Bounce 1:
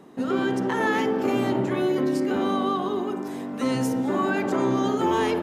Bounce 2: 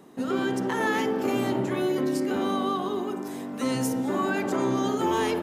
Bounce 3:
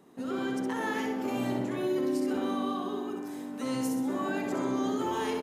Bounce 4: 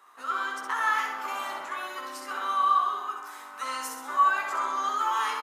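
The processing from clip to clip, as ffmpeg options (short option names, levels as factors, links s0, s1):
-af "highshelf=f=5800:g=8.5,volume=0.75"
-af "aecho=1:1:65|130|195|260|325:0.562|0.247|0.109|0.0479|0.0211,volume=0.422"
-filter_complex "[0:a]highpass=f=1200:t=q:w=4.9,asplit=2[s0][s1];[s1]adelay=15,volume=0.473[s2];[s0][s2]amix=inputs=2:normalize=0,volume=1.33"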